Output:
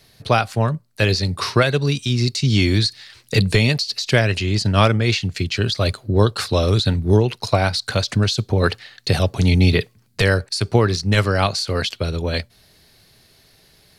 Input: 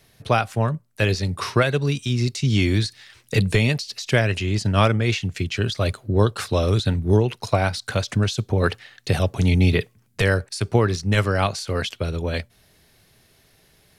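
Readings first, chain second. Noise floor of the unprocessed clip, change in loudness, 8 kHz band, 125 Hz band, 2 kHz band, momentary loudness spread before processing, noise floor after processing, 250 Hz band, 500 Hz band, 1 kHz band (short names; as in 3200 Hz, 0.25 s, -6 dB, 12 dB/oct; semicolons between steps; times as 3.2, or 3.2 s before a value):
-59 dBFS, +3.0 dB, +3.5 dB, +2.5 dB, +3.0 dB, 7 LU, -55 dBFS, +2.5 dB, +2.5 dB, +2.5 dB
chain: bell 4400 Hz +8 dB 0.42 oct; gain +2.5 dB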